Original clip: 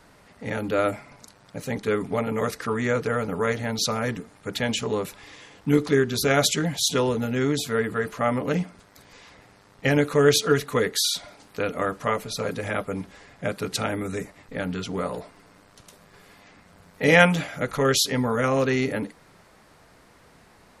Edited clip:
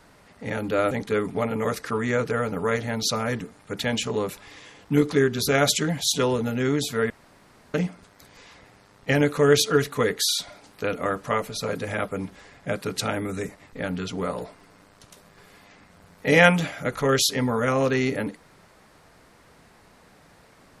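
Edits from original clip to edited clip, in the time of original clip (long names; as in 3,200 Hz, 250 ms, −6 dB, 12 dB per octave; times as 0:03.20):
0:00.91–0:01.67: remove
0:07.86–0:08.50: fill with room tone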